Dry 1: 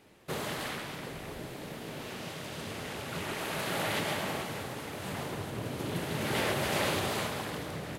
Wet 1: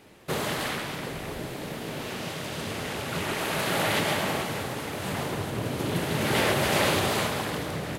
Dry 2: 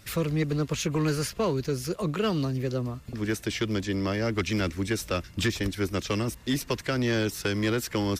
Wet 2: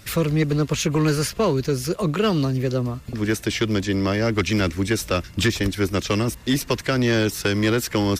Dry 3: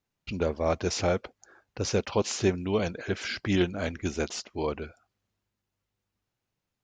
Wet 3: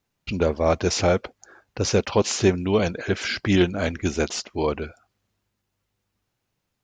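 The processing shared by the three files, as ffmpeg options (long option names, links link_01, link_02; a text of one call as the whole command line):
ffmpeg -i in.wav -af "acontrast=65" out.wav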